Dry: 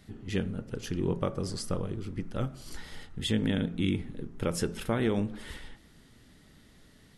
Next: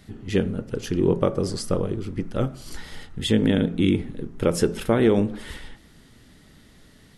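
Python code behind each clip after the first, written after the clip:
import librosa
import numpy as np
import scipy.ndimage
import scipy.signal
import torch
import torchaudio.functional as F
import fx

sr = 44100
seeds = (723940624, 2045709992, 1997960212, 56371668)

y = fx.dynamic_eq(x, sr, hz=410.0, q=0.85, threshold_db=-40.0, ratio=4.0, max_db=6)
y = y * librosa.db_to_amplitude(5.5)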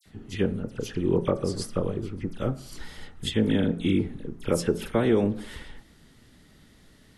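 y = fx.dispersion(x, sr, late='lows', ms=58.0, hz=2600.0)
y = y * librosa.db_to_amplitude(-3.5)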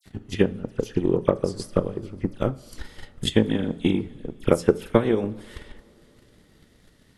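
y = fx.transient(x, sr, attack_db=12, sustain_db=-1)
y = fx.rev_double_slope(y, sr, seeds[0], early_s=0.43, late_s=4.3, knee_db=-18, drr_db=16.5)
y = y * librosa.db_to_amplitude(-3.5)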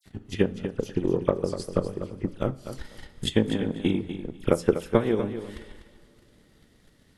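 y = fx.echo_feedback(x, sr, ms=246, feedback_pct=16, wet_db=-10.5)
y = y * librosa.db_to_amplitude(-3.0)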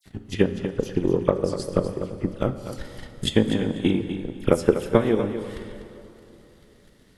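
y = fx.rev_plate(x, sr, seeds[1], rt60_s=3.3, hf_ratio=0.7, predelay_ms=0, drr_db=12.0)
y = y * librosa.db_to_amplitude(3.0)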